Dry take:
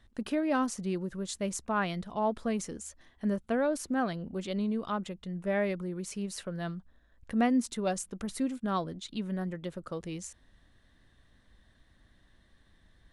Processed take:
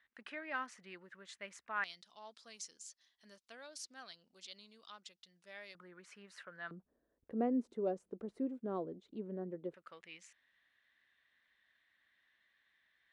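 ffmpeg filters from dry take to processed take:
ffmpeg -i in.wav -af "asetnsamples=nb_out_samples=441:pad=0,asendcmd='1.84 bandpass f 4900;5.75 bandpass f 1600;6.71 bandpass f 410;9.74 bandpass f 2200',bandpass=frequency=1900:width_type=q:width=2.3:csg=0" out.wav

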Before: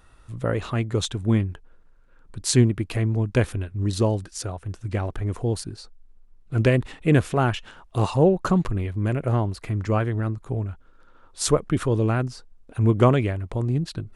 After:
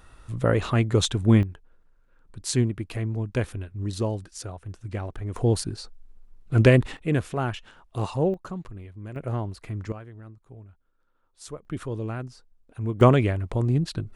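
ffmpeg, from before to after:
ffmpeg -i in.wav -af "asetnsamples=nb_out_samples=441:pad=0,asendcmd='1.43 volume volume -5.5dB;5.36 volume volume 3dB;6.97 volume volume -6dB;8.34 volume volume -14.5dB;9.16 volume volume -6.5dB;9.92 volume volume -18.5dB;11.65 volume volume -9.5dB;13.01 volume volume 1dB',volume=3dB" out.wav

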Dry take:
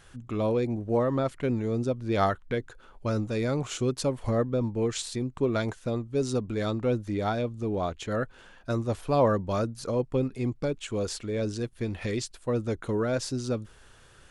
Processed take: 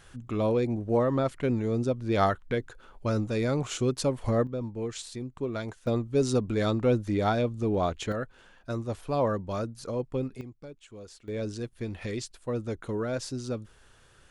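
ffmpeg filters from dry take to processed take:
ffmpeg -i in.wav -af "asetnsamples=nb_out_samples=441:pad=0,asendcmd='4.47 volume volume -6dB;5.87 volume volume 2.5dB;8.12 volume volume -4dB;10.41 volume volume -15.5dB;11.28 volume volume -3.5dB',volume=0.5dB" out.wav

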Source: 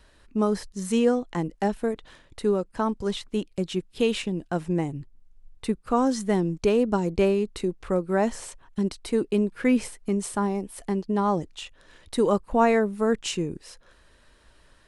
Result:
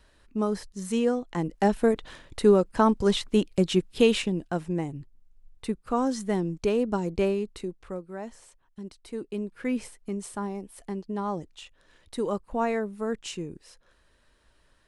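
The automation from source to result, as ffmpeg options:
ffmpeg -i in.wav -af "volume=12.5dB,afade=type=in:start_time=1.27:duration=0.64:silence=0.375837,afade=type=out:start_time=3.78:duration=0.89:silence=0.375837,afade=type=out:start_time=7.27:duration=0.85:silence=0.281838,afade=type=in:start_time=8.81:duration=0.95:silence=0.421697" out.wav

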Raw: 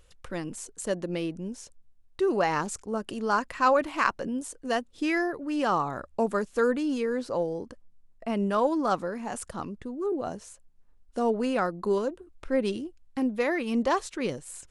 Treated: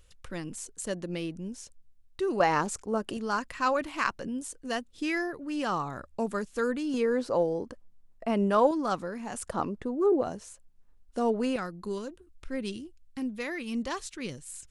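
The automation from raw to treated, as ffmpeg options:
ffmpeg -i in.wav -af "asetnsamples=nb_out_samples=441:pad=0,asendcmd='2.4 equalizer g 2;3.17 equalizer g -6;6.94 equalizer g 2.5;8.71 equalizer g -4.5;9.47 equalizer g 7;10.23 equalizer g -1.5;11.56 equalizer g -12',equalizer=frequency=650:width_type=o:width=2.6:gain=-5.5" out.wav

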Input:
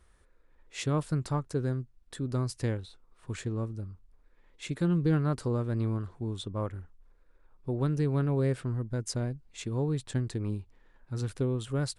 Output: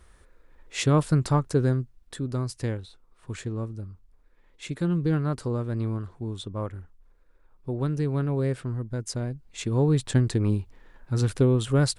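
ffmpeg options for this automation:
ffmpeg -i in.wav -af "volume=15.5dB,afade=type=out:start_time=1.61:duration=0.75:silence=0.473151,afade=type=in:start_time=9.25:duration=0.74:silence=0.421697" out.wav

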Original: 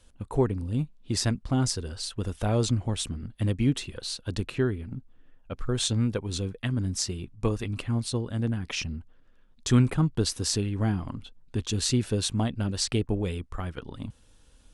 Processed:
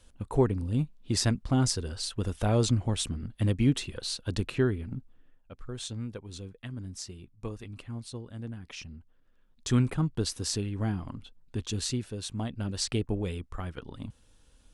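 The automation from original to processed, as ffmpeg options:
ffmpeg -i in.wav -af "volume=15dB,afade=type=out:start_time=4.96:duration=0.56:silence=0.281838,afade=type=in:start_time=8.91:duration=0.79:silence=0.446684,afade=type=out:start_time=11.77:duration=0.36:silence=0.446684,afade=type=in:start_time=12.13:duration=0.7:silence=0.398107" out.wav

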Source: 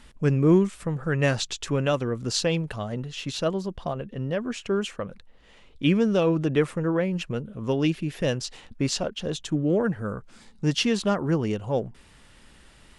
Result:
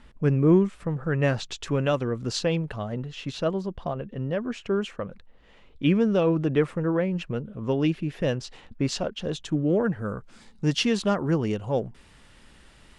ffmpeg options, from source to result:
ffmpeg -i in.wav -af "asetnsamples=nb_out_samples=441:pad=0,asendcmd='1.51 lowpass f 4200;2.39 lowpass f 2600;8.89 lowpass f 4400;10.02 lowpass f 8700',lowpass=frequency=2000:poles=1" out.wav

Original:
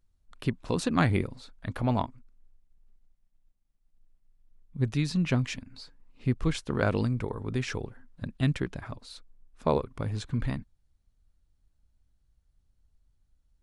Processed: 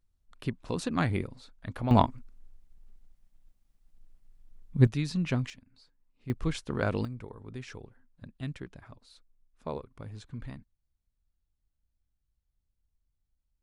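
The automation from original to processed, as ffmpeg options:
ffmpeg -i in.wav -af "asetnsamples=nb_out_samples=441:pad=0,asendcmd='1.91 volume volume 7dB;4.87 volume volume -3dB;5.5 volume volume -14.5dB;6.3 volume volume -3dB;7.05 volume volume -11dB',volume=-4dB" out.wav

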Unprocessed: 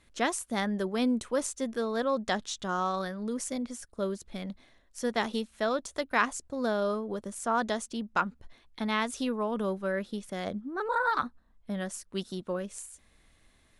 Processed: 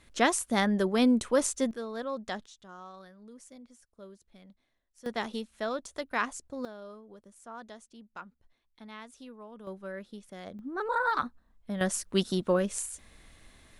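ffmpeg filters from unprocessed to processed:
ffmpeg -i in.wav -af "asetnsamples=nb_out_samples=441:pad=0,asendcmd='1.71 volume volume -6.5dB;2.46 volume volume -17dB;5.06 volume volume -4dB;6.65 volume volume -16.5dB;9.67 volume volume -9dB;10.59 volume volume -0.5dB;11.81 volume volume 7.5dB',volume=4dB" out.wav

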